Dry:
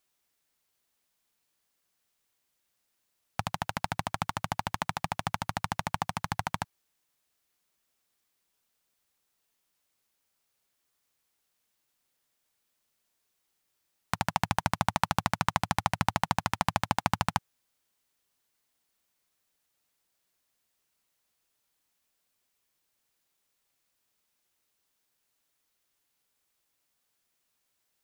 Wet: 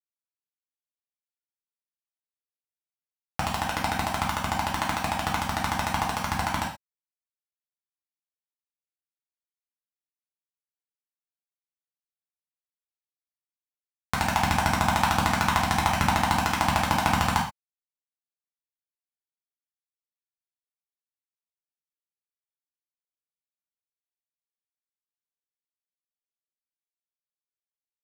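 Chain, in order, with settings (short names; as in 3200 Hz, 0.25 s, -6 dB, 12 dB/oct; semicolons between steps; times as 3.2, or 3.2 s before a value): sample gate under -28 dBFS; non-linear reverb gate 0.15 s falling, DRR -3.5 dB; gain +1 dB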